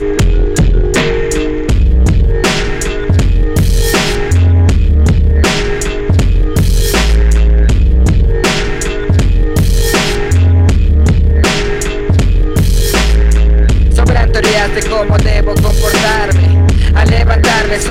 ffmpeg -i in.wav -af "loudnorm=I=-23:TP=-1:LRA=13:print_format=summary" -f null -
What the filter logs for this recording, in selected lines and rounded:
Input Integrated:    -11.1 LUFS
Input True Peak:      -4.1 dBTP
Input LRA:             1.2 LU
Input Threshold:     -21.1 LUFS